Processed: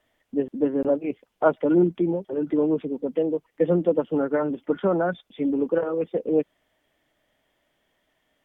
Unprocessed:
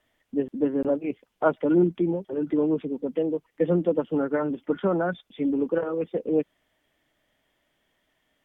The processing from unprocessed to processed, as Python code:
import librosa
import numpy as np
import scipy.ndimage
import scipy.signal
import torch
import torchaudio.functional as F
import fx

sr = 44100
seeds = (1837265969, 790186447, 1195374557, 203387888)

y = fx.peak_eq(x, sr, hz=610.0, db=3.0, octaves=1.4)